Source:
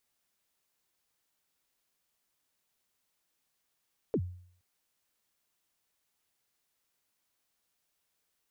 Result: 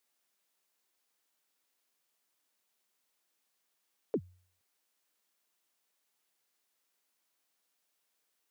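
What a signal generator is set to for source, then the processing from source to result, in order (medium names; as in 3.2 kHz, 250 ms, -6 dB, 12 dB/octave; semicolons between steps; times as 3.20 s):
kick drum length 0.47 s, from 520 Hz, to 90 Hz, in 64 ms, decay 0.58 s, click off, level -23.5 dB
high-pass 230 Hz 12 dB/octave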